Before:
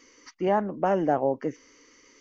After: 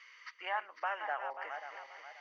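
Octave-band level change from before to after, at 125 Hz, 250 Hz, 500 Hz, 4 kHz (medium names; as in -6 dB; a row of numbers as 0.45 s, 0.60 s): under -40 dB, under -35 dB, -19.5 dB, no reading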